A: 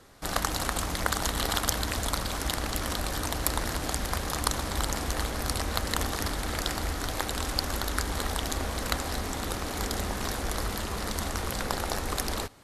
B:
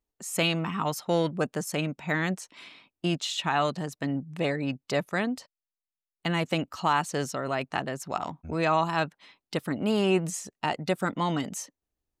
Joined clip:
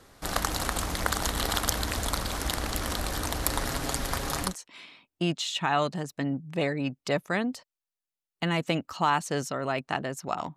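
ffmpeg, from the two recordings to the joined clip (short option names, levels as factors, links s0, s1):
-filter_complex "[0:a]asettb=1/sr,asplit=3[s0][s1][s2];[s0]atrim=end=3.494[s3];[s1]atrim=start=3.49:end=4.55,asetpts=PTS-STARTPTS,afade=t=in:d=0.004:c=qsin,afade=t=out:st=1.056:d=0.004:c=qsin,aecho=1:1:7.3:0.44,atrim=end_sample=46746[s4];[s2]atrim=start=4.546[s5];[s3][s4]acrossfade=d=0.004:c1=hsin:c2=qsin[s6];[s6][s5]acrossfade=d=0.004:c1=qsin:c2=hsin,apad=whole_dur=10.56,atrim=end=10.56,atrim=end=4.55,asetpts=PTS-STARTPTS[s7];[1:a]atrim=start=2.24:end=8.39,asetpts=PTS-STARTPTS[s8];[s7][s8]acrossfade=d=0.14:c1=tri:c2=tri"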